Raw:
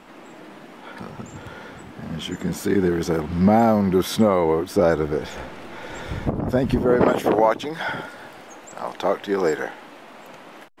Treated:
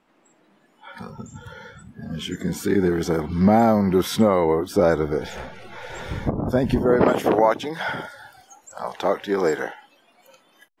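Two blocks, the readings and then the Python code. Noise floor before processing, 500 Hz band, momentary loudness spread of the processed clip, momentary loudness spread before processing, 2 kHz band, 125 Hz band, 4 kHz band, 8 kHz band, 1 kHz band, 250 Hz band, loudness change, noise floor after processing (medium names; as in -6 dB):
-44 dBFS, 0.0 dB, 20 LU, 20 LU, 0.0 dB, 0.0 dB, 0.0 dB, 0.0 dB, 0.0 dB, 0.0 dB, 0.0 dB, -60 dBFS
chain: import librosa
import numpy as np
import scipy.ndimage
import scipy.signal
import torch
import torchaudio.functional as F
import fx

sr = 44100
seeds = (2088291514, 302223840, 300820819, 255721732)

y = fx.noise_reduce_blind(x, sr, reduce_db=18)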